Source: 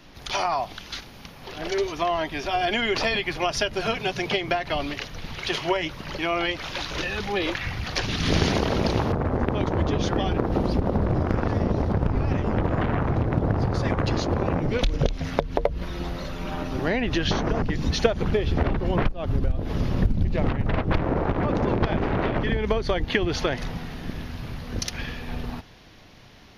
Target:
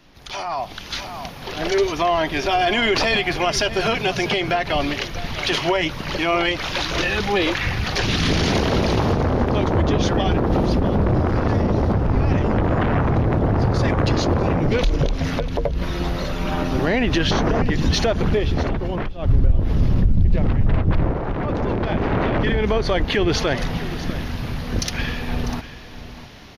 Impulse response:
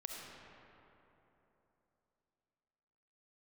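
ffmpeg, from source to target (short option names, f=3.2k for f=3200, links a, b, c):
-filter_complex "[0:a]asplit=2[a][b];[b]asoftclip=type=tanh:threshold=-22.5dB,volume=-9dB[c];[a][c]amix=inputs=2:normalize=0,alimiter=limit=-15.5dB:level=0:latency=1:release=14,asettb=1/sr,asplit=3[d][e][f];[d]atrim=end=19.224[g];[e]atrim=start=19.22:end=21.11,asetpts=PTS-STARTPTS,afade=t=in:d=0.004:c=qsin,afade=t=out:st=1.886:d=0.004:c=qsin,lowshelf=f=190:g=11.5[h];[f]atrim=start=21.106[i];[g][h]acrossfade=d=0.004:c1=hsin:c2=qsin[j];[j][i]acrossfade=d=0.004:c1=qsin:c2=hsin,aecho=1:1:647:0.188,dynaudnorm=f=210:g=7:m=11dB,volume=-5.5dB"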